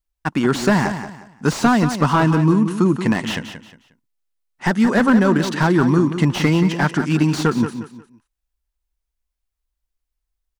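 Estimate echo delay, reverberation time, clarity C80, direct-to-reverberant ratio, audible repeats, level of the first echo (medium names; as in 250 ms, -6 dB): 179 ms, no reverb, no reverb, no reverb, 3, -10.0 dB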